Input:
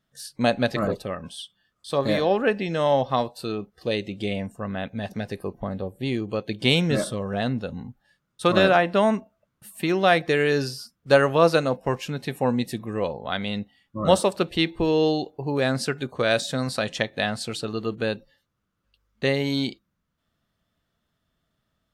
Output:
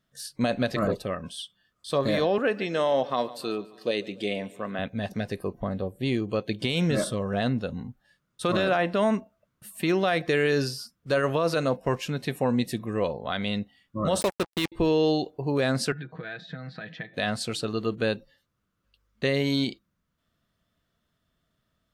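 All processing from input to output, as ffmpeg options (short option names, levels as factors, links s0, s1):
-filter_complex "[0:a]asettb=1/sr,asplit=3[s0][s1][s2];[s0]atrim=end=2.384[s3];[s1]atrim=start=2.38:end=4.79,asetpts=PTS-STARTPTS,afade=t=in:d=0.004:c=qsin,afade=t=out:st=2.406:d=0.004:c=qsin,highpass=240,aecho=1:1:144|288|432|576:0.0891|0.0499|0.0279|0.0157,atrim=end_sample=106281[s4];[s2]atrim=start=4.786[s5];[s3][s4]acrossfade=d=0.004:c1=hsin:c2=qsin[s6];[s6][s5]acrossfade=d=0.004:c1=qsin:c2=hsin,asettb=1/sr,asplit=3[s7][s8][s9];[s7]atrim=end=14.214[s10];[s8]atrim=start=14.21:end=14.72,asetpts=PTS-STARTPTS,afade=t=in:d=0.004:c=qsin,afade=t=out:st=0.506:d=0.004:c=qsin,highshelf=f=9800:g=7,acrusher=bits=3:mix=0:aa=0.5[s11];[s9]atrim=start=14.716[s12];[s10][s11]acrossfade=d=0.004:c1=hsin:c2=qsin[s13];[s13][s12]acrossfade=d=0.004:c1=qsin:c2=hsin,asettb=1/sr,asplit=3[s14][s15][s16];[s14]atrim=end=15.924[s17];[s15]atrim=start=15.92:end=17.14,asetpts=PTS-STARTPTS,afade=t=in:d=0.004:c=qsin,afade=t=out:st=1.216:d=0.004:c=qsin,aecho=1:1:6.3:0.62,atrim=end_sample=53802,acompressor=threshold=0.0158:ratio=4:attack=3.2:release=140:knee=1:detection=peak,highpass=110,equalizer=f=170:t=q:w=4:g=9,equalizer=f=300:t=q:w=4:g=-4,equalizer=f=560:t=q:w=4:g=-8,equalizer=f=1100:t=q:w=4:g=-8,equalizer=f=1700:t=q:w=4:g=8,equalizer=f=2900:t=q:w=4:g=-8,lowpass=f=3400:w=0.5412,lowpass=f=3400:w=1.3066[s18];[s16]atrim=start=17.136[s19];[s17][s18]acrossfade=d=0.004:c1=hsin:c2=qsin[s20];[s20][s19]acrossfade=d=0.004:c1=qsin:c2=hsin,bandreject=f=830:w=12,alimiter=limit=0.178:level=0:latency=1:release=40"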